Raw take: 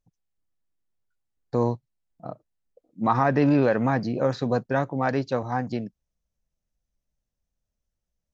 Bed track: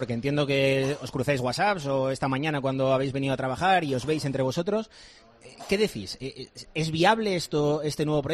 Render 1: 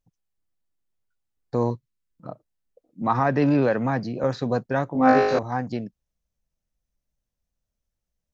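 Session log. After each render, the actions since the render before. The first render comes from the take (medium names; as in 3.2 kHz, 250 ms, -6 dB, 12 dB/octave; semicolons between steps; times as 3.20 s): 1.70–2.27 s: Butterworth band-stop 720 Hz, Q 1.6; 3.02–4.24 s: three bands expanded up and down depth 40%; 4.93–5.39 s: flutter echo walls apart 3.3 m, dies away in 1 s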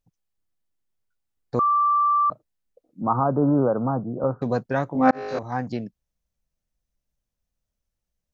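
1.59–2.30 s: bleep 1.17 kHz -16.5 dBFS; 3.01–4.42 s: steep low-pass 1.4 kHz 96 dB/octave; 5.11–5.59 s: fade in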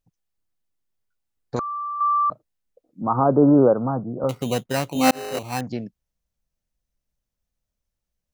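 1.56–2.01 s: spectrum-flattening compressor 2:1; 3.15–3.74 s: dynamic bell 400 Hz, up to +7 dB, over -33 dBFS, Q 0.79; 4.29–5.61 s: sample-rate reducer 3.4 kHz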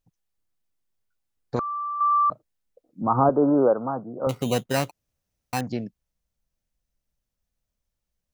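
1.56–2.12 s: distance through air 130 m; 3.29–4.27 s: high-pass 460 Hz 6 dB/octave; 4.91–5.53 s: room tone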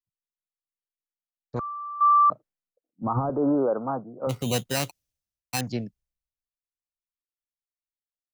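peak limiter -17.5 dBFS, peak gain reduction 11 dB; three bands expanded up and down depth 100%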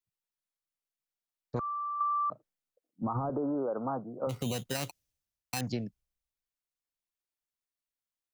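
peak limiter -19 dBFS, peak gain reduction 8 dB; compression, threshold -29 dBFS, peak gain reduction 7.5 dB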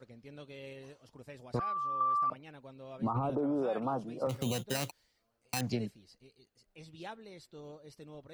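add bed track -24.5 dB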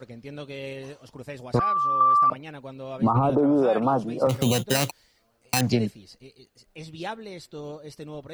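trim +11.5 dB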